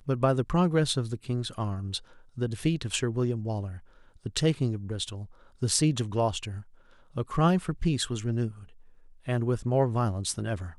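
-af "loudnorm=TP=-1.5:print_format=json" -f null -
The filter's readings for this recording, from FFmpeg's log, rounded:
"input_i" : "-28.8",
"input_tp" : "-7.4",
"input_lra" : "2.0",
"input_thresh" : "-39.6",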